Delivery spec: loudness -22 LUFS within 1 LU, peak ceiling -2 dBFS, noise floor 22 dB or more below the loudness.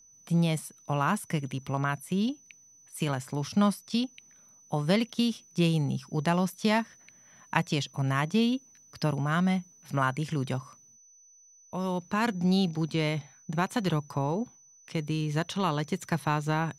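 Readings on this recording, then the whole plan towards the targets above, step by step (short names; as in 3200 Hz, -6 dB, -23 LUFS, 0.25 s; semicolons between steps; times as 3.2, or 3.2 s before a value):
steady tone 6000 Hz; tone level -55 dBFS; loudness -29.5 LUFS; peak -6.5 dBFS; loudness target -22.0 LUFS
-> notch 6000 Hz, Q 30; gain +7.5 dB; limiter -2 dBFS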